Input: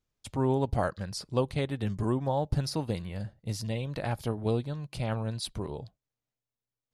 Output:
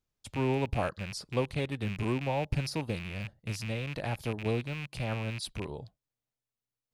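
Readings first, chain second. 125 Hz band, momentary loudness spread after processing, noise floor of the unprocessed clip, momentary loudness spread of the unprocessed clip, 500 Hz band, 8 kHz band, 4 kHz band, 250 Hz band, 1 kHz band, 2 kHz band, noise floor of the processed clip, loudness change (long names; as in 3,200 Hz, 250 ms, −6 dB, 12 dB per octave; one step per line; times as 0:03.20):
−2.5 dB, 9 LU, below −85 dBFS, 9 LU, −2.5 dB, −2.5 dB, −0.5 dB, −2.5 dB, −2.5 dB, +5.0 dB, below −85 dBFS, −2.0 dB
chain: loose part that buzzes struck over −36 dBFS, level −27 dBFS
level −2.5 dB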